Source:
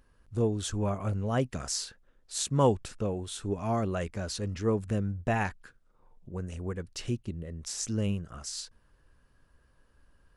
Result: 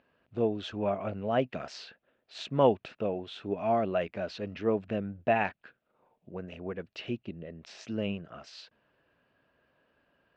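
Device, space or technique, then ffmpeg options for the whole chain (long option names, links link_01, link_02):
kitchen radio: -af "highpass=190,equalizer=frequency=650:width_type=q:width=4:gain=8,equalizer=frequency=1100:width_type=q:width=4:gain=-3,equalizer=frequency=2600:width_type=q:width=4:gain=6,lowpass=frequency=3700:width=0.5412,lowpass=frequency=3700:width=1.3066"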